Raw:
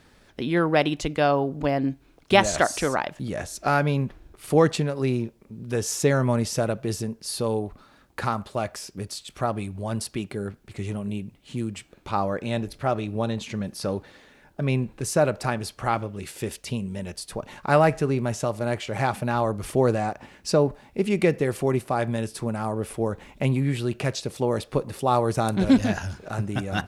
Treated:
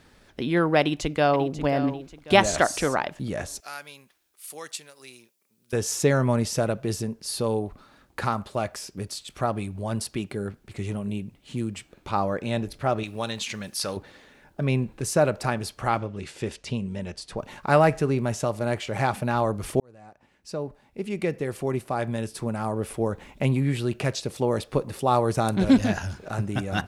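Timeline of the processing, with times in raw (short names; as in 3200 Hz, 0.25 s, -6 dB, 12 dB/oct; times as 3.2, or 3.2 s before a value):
0.79–1.53 echo throw 0.54 s, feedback 40%, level -12 dB
3.6–5.73 differentiator
13.03–13.97 tilt shelf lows -8 dB
15.98–17.38 Bessel low-pass 6400 Hz, order 4
19.8–22.77 fade in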